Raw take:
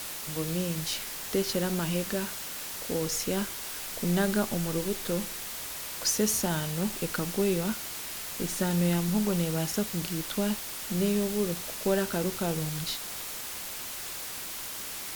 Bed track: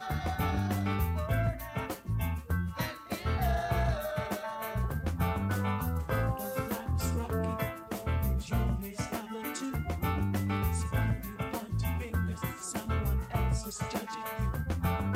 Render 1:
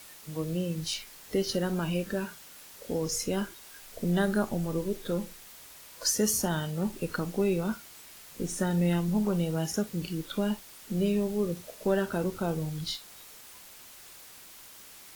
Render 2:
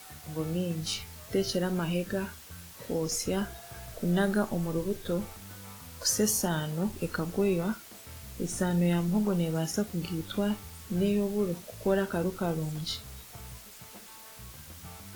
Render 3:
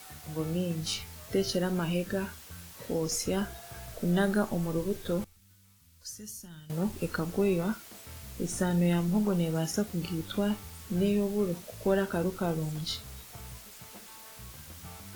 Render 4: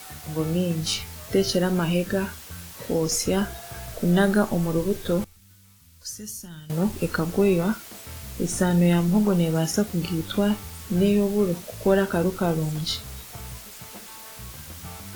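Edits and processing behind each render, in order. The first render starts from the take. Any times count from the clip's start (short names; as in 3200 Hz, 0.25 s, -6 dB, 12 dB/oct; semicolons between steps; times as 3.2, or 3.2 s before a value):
noise print and reduce 12 dB
add bed track -17 dB
5.24–6.7 passive tone stack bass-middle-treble 6-0-2
gain +7 dB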